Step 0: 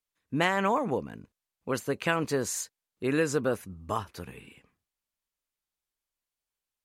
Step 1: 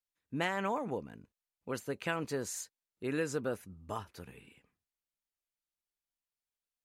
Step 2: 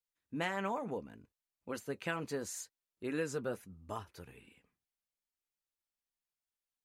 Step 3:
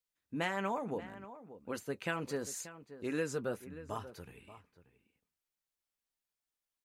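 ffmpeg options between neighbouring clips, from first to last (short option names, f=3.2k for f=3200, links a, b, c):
-af "bandreject=f=1.1k:w=14,volume=-7.5dB"
-af "flanger=delay=1.9:depth=3.7:regen=-62:speed=0.72:shape=triangular,volume=1.5dB"
-filter_complex "[0:a]asplit=2[a][b];[b]adelay=583.1,volume=-14dB,highshelf=f=4k:g=-13.1[c];[a][c]amix=inputs=2:normalize=0,volume=1dB"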